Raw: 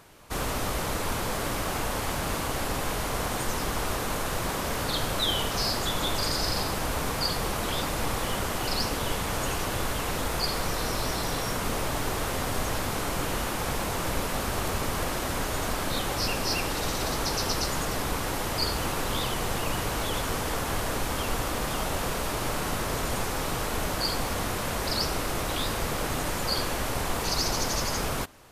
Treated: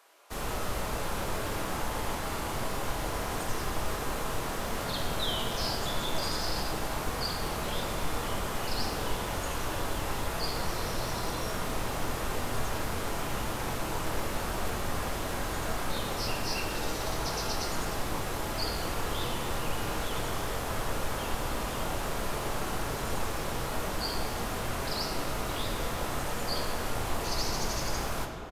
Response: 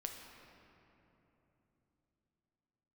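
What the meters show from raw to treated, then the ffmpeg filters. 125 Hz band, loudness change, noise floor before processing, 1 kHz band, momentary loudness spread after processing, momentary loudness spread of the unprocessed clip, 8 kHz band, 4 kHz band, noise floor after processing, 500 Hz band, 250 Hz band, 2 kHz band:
−3.5 dB, −4.5 dB, −31 dBFS, −3.5 dB, 2 LU, 3 LU, −6.0 dB, −5.0 dB, −35 dBFS, −3.5 dB, −4.0 dB, −4.0 dB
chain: -filter_complex "[0:a]acrossover=split=410|1600[link_01][link_02][link_03];[link_01]acrusher=bits=6:mix=0:aa=0.000001[link_04];[link_02]asplit=2[link_05][link_06];[link_06]adelay=25,volume=-3dB[link_07];[link_05][link_07]amix=inputs=2:normalize=0[link_08];[link_04][link_08][link_03]amix=inputs=3:normalize=0[link_09];[1:a]atrim=start_sample=2205,asetrate=61740,aresample=44100[link_10];[link_09][link_10]afir=irnorm=-1:irlink=0"

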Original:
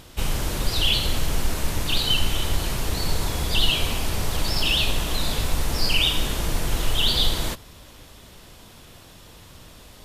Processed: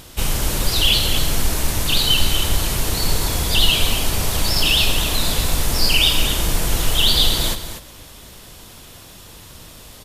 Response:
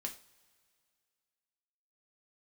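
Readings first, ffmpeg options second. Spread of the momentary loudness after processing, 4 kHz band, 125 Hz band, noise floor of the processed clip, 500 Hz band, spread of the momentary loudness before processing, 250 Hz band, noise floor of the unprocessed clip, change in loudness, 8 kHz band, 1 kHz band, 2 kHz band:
7 LU, +6.0 dB, +4.0 dB, −42 dBFS, +4.0 dB, 7 LU, +4.0 dB, −47 dBFS, +6.0 dB, +9.0 dB, +4.0 dB, +5.0 dB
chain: -filter_complex "[0:a]highshelf=frequency=5500:gain=7,asplit=2[link_01][link_02];[link_02]aecho=0:1:242:0.335[link_03];[link_01][link_03]amix=inputs=2:normalize=0,volume=3.5dB"

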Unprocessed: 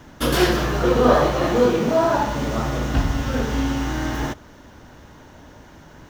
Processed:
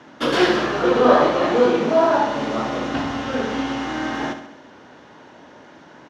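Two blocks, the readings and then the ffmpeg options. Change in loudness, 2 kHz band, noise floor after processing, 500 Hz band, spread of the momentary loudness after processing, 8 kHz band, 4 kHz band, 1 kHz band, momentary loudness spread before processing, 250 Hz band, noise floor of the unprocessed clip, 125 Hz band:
+1.0 dB, +2.0 dB, −46 dBFS, +2.0 dB, 10 LU, −6.0 dB, +1.0 dB, +2.5 dB, 9 LU, +0.5 dB, −46 dBFS, −10.0 dB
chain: -filter_complex "[0:a]highpass=240,lowpass=4400,asplit=2[link_01][link_02];[link_02]aecho=0:1:68|136|204|272|340|408:0.316|0.168|0.0888|0.0471|0.025|0.0132[link_03];[link_01][link_03]amix=inputs=2:normalize=0,volume=2dB"

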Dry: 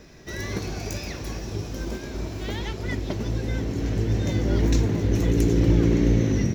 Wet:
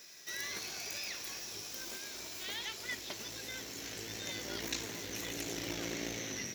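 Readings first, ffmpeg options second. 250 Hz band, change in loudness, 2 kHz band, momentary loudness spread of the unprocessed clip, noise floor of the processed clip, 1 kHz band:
−22.0 dB, −14.5 dB, −4.5 dB, 13 LU, −46 dBFS, −10.5 dB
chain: -filter_complex "[0:a]acrossover=split=3900[link_01][link_02];[link_02]acompressor=threshold=-48dB:ratio=4:attack=1:release=60[link_03];[link_01][link_03]amix=inputs=2:normalize=0,aeval=exprs='0.422*(cos(1*acos(clip(val(0)/0.422,-1,1)))-cos(1*PI/2))+0.133*(cos(2*acos(clip(val(0)/0.422,-1,1)))-cos(2*PI/2))':channel_layout=same,aderivative,volume=6.5dB"

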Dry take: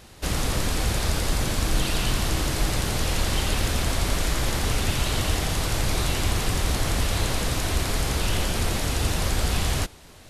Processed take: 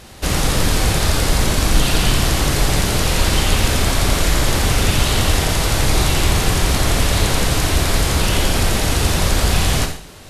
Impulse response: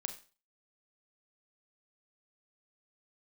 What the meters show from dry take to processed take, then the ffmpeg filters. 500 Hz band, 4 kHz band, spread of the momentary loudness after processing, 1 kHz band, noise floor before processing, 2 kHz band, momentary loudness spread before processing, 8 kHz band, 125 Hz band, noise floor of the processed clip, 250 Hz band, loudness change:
+8.5 dB, +8.5 dB, 1 LU, +8.5 dB, −47 dBFS, +8.5 dB, 1 LU, +8.5 dB, +8.0 dB, −34 dBFS, +8.5 dB, +8.0 dB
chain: -filter_complex "[1:a]atrim=start_sample=2205,asetrate=33075,aresample=44100[link_01];[0:a][link_01]afir=irnorm=-1:irlink=0,volume=7.5dB"

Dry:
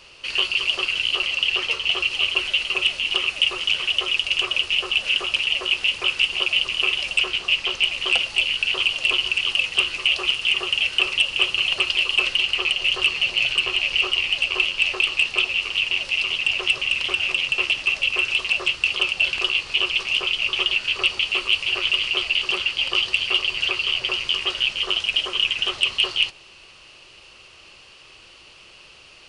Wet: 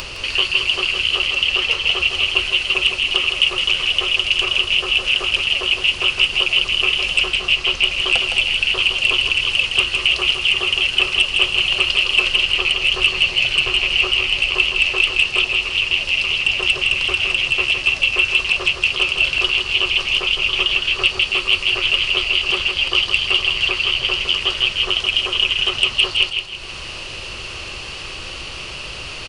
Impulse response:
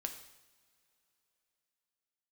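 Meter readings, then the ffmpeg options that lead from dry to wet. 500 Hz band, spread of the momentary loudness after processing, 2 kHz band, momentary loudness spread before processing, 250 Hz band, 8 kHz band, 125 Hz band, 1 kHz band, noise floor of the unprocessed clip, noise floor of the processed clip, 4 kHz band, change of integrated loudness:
+5.5 dB, 3 LU, +4.0 dB, 2 LU, +6.0 dB, +4.5 dB, can't be measured, +4.5 dB, −48 dBFS, −31 dBFS, +4.0 dB, +4.0 dB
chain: -af "lowshelf=frequency=150:gain=9.5,acompressor=mode=upward:threshold=-22dB:ratio=2.5,aecho=1:1:162|324|486|648:0.501|0.17|0.0579|0.0197,volume=3dB"

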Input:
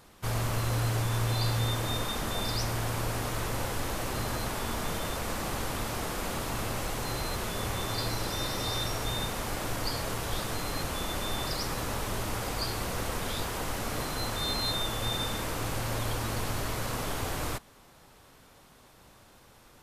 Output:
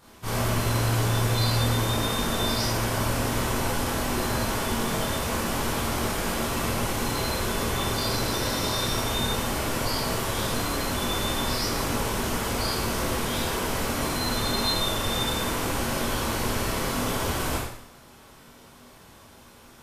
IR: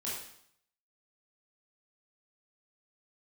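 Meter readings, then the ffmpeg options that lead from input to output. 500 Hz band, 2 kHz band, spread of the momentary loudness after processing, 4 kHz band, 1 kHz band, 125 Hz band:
+6.5 dB, +6.0 dB, 3 LU, +5.5 dB, +6.0 dB, +4.5 dB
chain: -filter_complex "[1:a]atrim=start_sample=2205[link_01];[0:a][link_01]afir=irnorm=-1:irlink=0,volume=4dB"

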